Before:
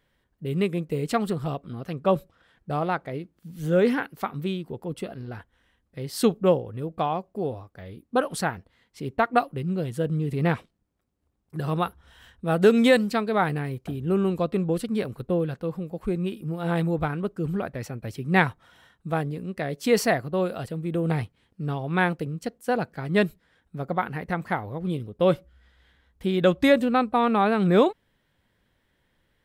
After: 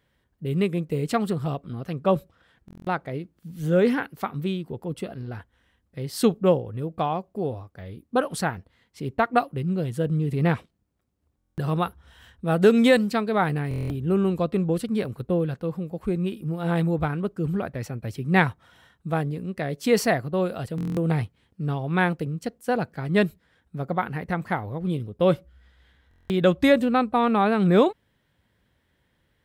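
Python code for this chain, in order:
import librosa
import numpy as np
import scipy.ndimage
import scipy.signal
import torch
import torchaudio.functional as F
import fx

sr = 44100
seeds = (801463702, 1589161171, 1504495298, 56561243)

y = scipy.signal.sosfilt(scipy.signal.butter(2, 57.0, 'highpass', fs=sr, output='sos'), x)
y = fx.low_shelf(y, sr, hz=110.0, db=7.0)
y = fx.buffer_glitch(y, sr, at_s=(2.66, 11.37, 13.69, 20.76, 26.09), block=1024, repeats=8)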